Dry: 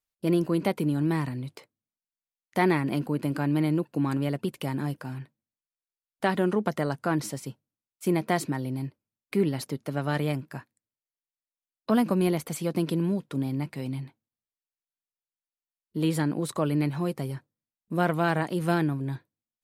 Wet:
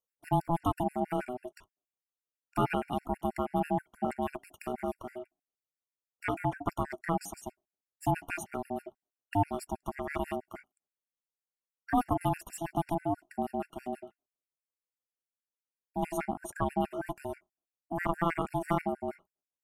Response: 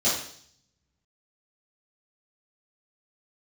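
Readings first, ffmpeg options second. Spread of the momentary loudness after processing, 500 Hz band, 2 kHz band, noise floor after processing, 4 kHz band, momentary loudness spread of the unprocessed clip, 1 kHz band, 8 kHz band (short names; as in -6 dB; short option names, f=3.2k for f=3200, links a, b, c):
12 LU, -5.5 dB, -6.5 dB, under -85 dBFS, -10.5 dB, 12 LU, +1.0 dB, -6.5 dB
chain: -af "asuperstop=centerf=3900:order=4:qfactor=1.7,aeval=exprs='val(0)*sin(2*PI*500*n/s)':c=same,afftfilt=real='re*gt(sin(2*PI*6.2*pts/sr)*(1-2*mod(floor(b*sr/1024/1400),2)),0)':imag='im*gt(sin(2*PI*6.2*pts/sr)*(1-2*mod(floor(b*sr/1024/1400),2)),0)':win_size=1024:overlap=0.75"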